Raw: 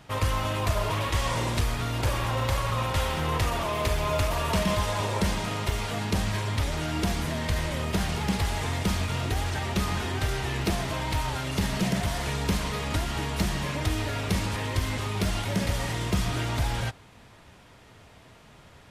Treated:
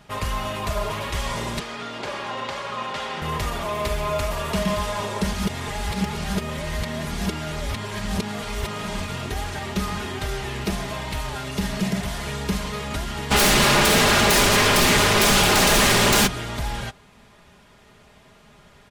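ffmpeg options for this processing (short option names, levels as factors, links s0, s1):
-filter_complex "[0:a]asettb=1/sr,asplit=3[s0][s1][s2];[s0]atrim=end=1.594[s3];[s1]atrim=start=1.59:end=3.22,asetpts=PTS-STARTPTS,afade=t=in:d=0.004:c=qsin,afade=t=out:st=1.626:d=0.004:c=qsin,highpass=240,lowpass=5500[s4];[s2]atrim=start=3.216[s5];[s3][s4]acrossfade=d=0.004:c1=hsin:c2=qsin[s6];[s6][s5]acrossfade=d=0.004:c1=qsin:c2=hsin,asplit=3[s7][s8][s9];[s7]afade=t=out:st=13.3:d=0.02[s10];[s8]aeval=exprs='0.188*sin(PI/2*7.08*val(0)/0.188)':c=same,afade=t=in:st=13.3:d=0.02,afade=t=out:st=16.26:d=0.02[s11];[s9]afade=t=in:st=16.26:d=0.02[s12];[s10][s11][s12]amix=inputs=3:normalize=0,asplit=3[s13][s14][s15];[s13]atrim=end=5.332[s16];[s14]atrim=start=5.328:end=9.002,asetpts=PTS-STARTPTS,areverse[s17];[s15]atrim=start=8.998[s18];[s16][s17]acrossfade=d=0.004:c1=hsin:c2=hsin[s19];[s19][s18]acrossfade=d=0.004:c1=hsin:c2=hsin,aecho=1:1:4.9:0.5"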